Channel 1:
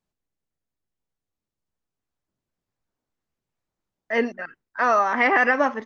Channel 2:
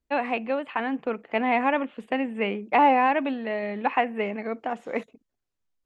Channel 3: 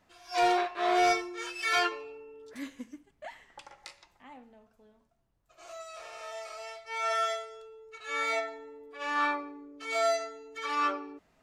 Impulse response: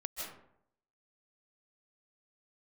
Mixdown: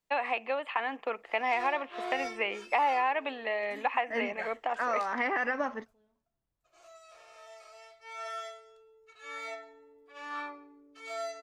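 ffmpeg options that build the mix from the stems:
-filter_complex "[0:a]volume=-7.5dB,asplit=2[link_01][link_02];[1:a]highpass=670,bandreject=frequency=1500:width=10,volume=2.5dB[link_03];[2:a]adelay=1150,volume=-1dB[link_04];[link_02]apad=whole_len=554468[link_05];[link_04][link_05]sidechaingate=range=-9dB:threshold=-52dB:ratio=16:detection=peak[link_06];[link_01][link_03][link_06]amix=inputs=3:normalize=0,acompressor=threshold=-28dB:ratio=2.5"

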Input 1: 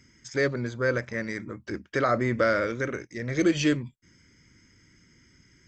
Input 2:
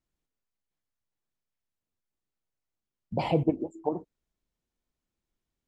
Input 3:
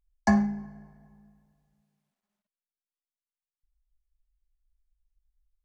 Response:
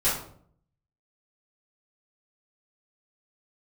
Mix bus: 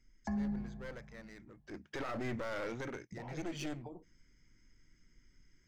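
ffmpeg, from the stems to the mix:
-filter_complex "[0:a]aeval=exprs='clip(val(0),-1,0.0251)':channel_layout=same,volume=-6dB,afade=type=in:start_time=1.64:duration=0.27:silence=0.251189,afade=type=out:start_time=2.72:duration=0.39:silence=0.446684[link_01];[1:a]alimiter=limit=-21.5dB:level=0:latency=1:release=26,acompressor=threshold=-36dB:ratio=6,lowpass=1200,volume=-9.5dB[link_02];[2:a]aemphasis=mode=reproduction:type=bsi,volume=-8dB[link_03];[link_01][link_02][link_03]amix=inputs=3:normalize=0,alimiter=level_in=6dB:limit=-24dB:level=0:latency=1:release=23,volume=-6dB"

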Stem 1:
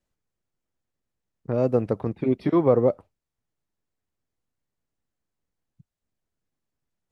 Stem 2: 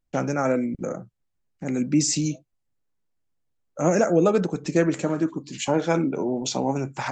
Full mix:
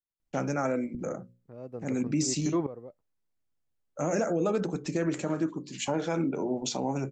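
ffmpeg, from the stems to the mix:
ffmpeg -i stem1.wav -i stem2.wav -filter_complex "[0:a]aeval=exprs='val(0)*pow(10,-20*if(lt(mod(-0.75*n/s,1),2*abs(-0.75)/1000),1-mod(-0.75*n/s,1)/(2*abs(-0.75)/1000),(mod(-0.75*n/s,1)-2*abs(-0.75)/1000)/(1-2*abs(-0.75)/1000))/20)':channel_layout=same,volume=-5dB,afade=type=out:start_time=2.75:duration=0.23:silence=0.266073[link_01];[1:a]bandreject=frequency=60:width_type=h:width=6,bandreject=frequency=120:width_type=h:width=6,bandreject=frequency=180:width_type=h:width=6,bandreject=frequency=240:width_type=h:width=6,bandreject=frequency=300:width_type=h:width=6,bandreject=frequency=360:width_type=h:width=6,bandreject=frequency=420:width_type=h:width=6,bandreject=frequency=480:width_type=h:width=6,bandreject=frequency=540:width_type=h:width=6,adelay=200,volume=-4dB[link_02];[link_01][link_02]amix=inputs=2:normalize=0,alimiter=limit=-19dB:level=0:latency=1:release=58" out.wav

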